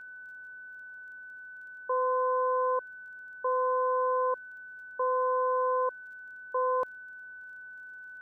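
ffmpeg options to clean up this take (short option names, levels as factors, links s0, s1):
-af "adeclick=t=4,bandreject=f=1500:w=30,agate=range=0.0891:threshold=0.0126"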